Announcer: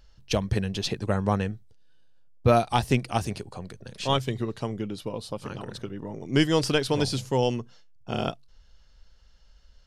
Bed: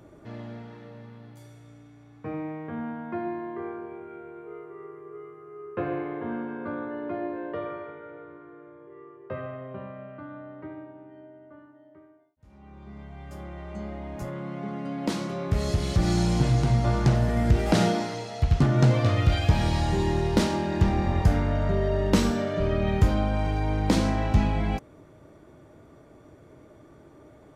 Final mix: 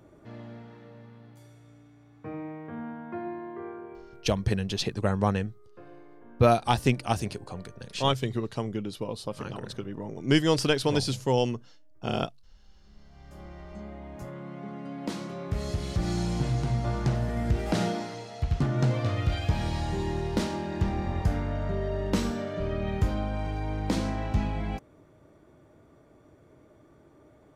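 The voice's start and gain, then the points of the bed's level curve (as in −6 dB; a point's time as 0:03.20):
3.95 s, −0.5 dB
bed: 0:03.92 −4 dB
0:04.62 −20 dB
0:12.78 −20 dB
0:13.41 −5.5 dB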